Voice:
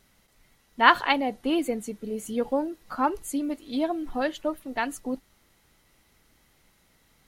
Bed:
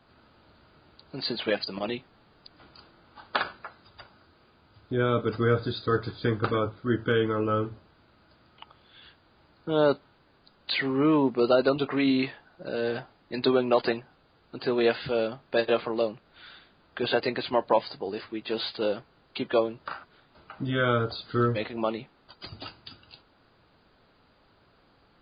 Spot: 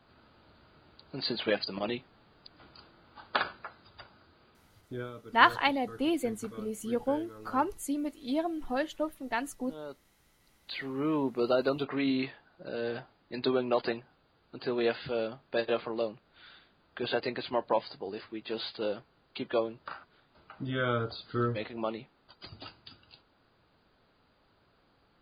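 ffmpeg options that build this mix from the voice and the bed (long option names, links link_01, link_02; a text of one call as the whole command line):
ffmpeg -i stem1.wav -i stem2.wav -filter_complex "[0:a]adelay=4550,volume=-4dB[link_01];[1:a]volume=13.5dB,afade=type=out:start_time=4.49:duration=0.64:silence=0.112202,afade=type=in:start_time=10.19:duration=1.28:silence=0.16788[link_02];[link_01][link_02]amix=inputs=2:normalize=0" out.wav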